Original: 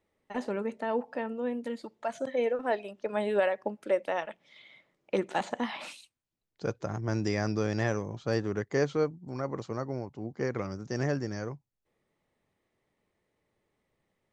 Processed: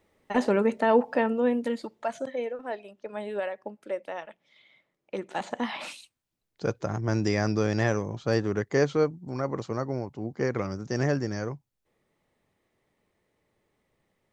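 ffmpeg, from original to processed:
-af "volume=18.5dB,afade=t=out:st=1.24:d=0.86:silence=0.446684,afade=t=out:st=2.1:d=0.38:silence=0.421697,afade=t=in:st=5.23:d=0.58:silence=0.354813"

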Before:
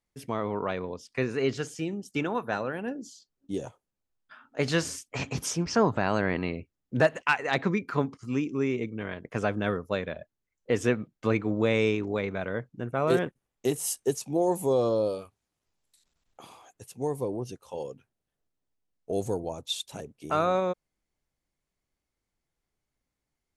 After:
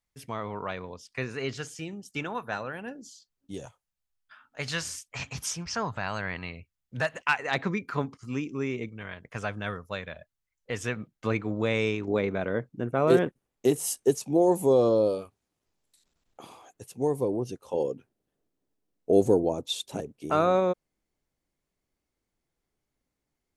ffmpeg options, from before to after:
-af "asetnsamples=n=441:p=0,asendcmd='3.66 equalizer g -15;7.14 equalizer g -4;8.89 equalizer g -11;10.96 equalizer g -3.5;12.08 equalizer g 4.5;17.64 equalizer g 11;20 equalizer g 4.5',equalizer=f=330:t=o:w=2:g=-7.5"

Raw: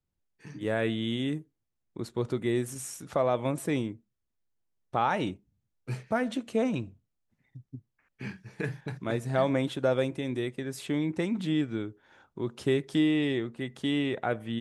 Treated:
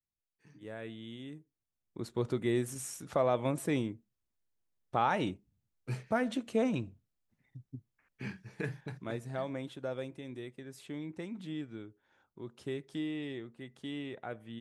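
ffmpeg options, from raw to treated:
-af "volume=-2.5dB,afade=t=in:st=1.36:d=0.8:silence=0.237137,afade=t=out:st=8.38:d=1.08:silence=0.334965"

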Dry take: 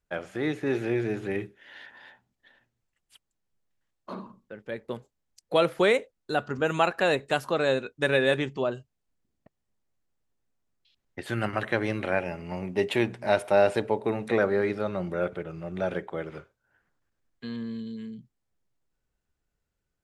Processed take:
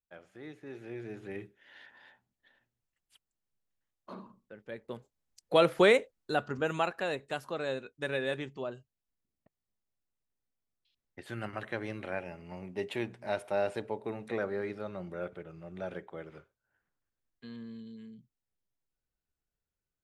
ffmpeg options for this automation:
-af "afade=t=in:st=0.75:d=1.06:silence=0.298538,afade=t=in:st=4.86:d=0.94:silence=0.421697,afade=t=out:st=5.8:d=1.27:silence=0.316228"

